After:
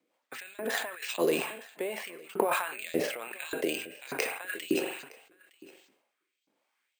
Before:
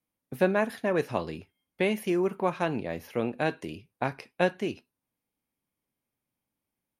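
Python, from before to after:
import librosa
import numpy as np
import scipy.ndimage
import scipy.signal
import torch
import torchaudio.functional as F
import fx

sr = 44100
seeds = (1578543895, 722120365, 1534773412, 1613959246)

y = fx.over_compress(x, sr, threshold_db=-36.0, ratio=-1.0)
y = fx.rev_spring(y, sr, rt60_s=1.4, pass_ms=(43,), chirp_ms=65, drr_db=16.0)
y = fx.filter_lfo_highpass(y, sr, shape='saw_up', hz=1.7, low_hz=300.0, high_hz=4200.0, q=1.9)
y = y + 10.0 ** (-22.5 / 20.0) * np.pad(y, (int(913 * sr / 1000.0), 0))[:len(y)]
y = fx.rotary_switch(y, sr, hz=5.0, then_hz=1.2, switch_at_s=0.47)
y = np.repeat(scipy.signal.resample_poly(y, 1, 4), 4)[:len(y)]
y = fx.sustainer(y, sr, db_per_s=74.0)
y = F.gain(torch.from_numpy(y), 6.5).numpy()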